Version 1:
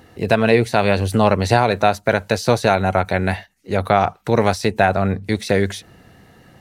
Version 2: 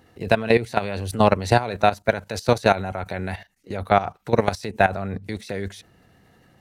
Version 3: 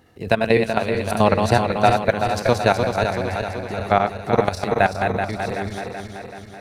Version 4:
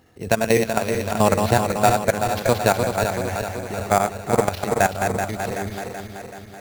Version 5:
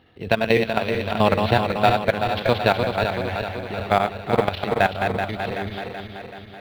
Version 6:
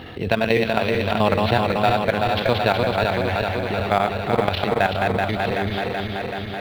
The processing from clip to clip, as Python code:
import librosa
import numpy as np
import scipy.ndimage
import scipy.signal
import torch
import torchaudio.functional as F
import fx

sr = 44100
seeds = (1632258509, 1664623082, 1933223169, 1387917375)

y1 = fx.level_steps(x, sr, step_db=14)
y2 = fx.reverse_delay_fb(y1, sr, ms=190, feedback_pct=75, wet_db=-5.0)
y3 = fx.sample_hold(y2, sr, seeds[0], rate_hz=8300.0, jitter_pct=0)
y3 = y3 * librosa.db_to_amplitude(-1.0)
y4 = fx.high_shelf_res(y3, sr, hz=4900.0, db=-13.0, q=3.0)
y4 = y4 * librosa.db_to_amplitude(-1.0)
y5 = fx.env_flatten(y4, sr, amount_pct=50)
y5 = y5 * librosa.db_to_amplitude(-2.5)